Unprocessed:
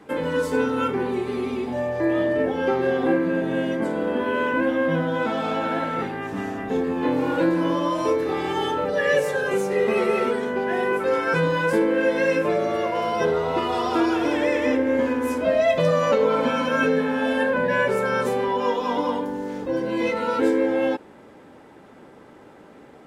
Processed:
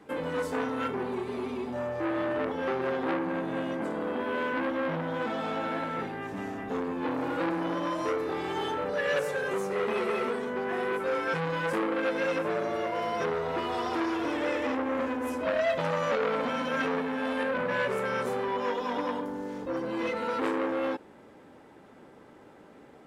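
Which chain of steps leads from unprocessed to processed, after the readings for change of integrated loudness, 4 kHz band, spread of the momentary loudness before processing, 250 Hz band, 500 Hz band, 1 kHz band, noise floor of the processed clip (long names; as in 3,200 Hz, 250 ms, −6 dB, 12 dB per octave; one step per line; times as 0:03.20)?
−8.0 dB, −6.5 dB, 5 LU, −8.5 dB, −8.5 dB, −6.0 dB, −53 dBFS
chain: saturating transformer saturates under 1,400 Hz
level −5.5 dB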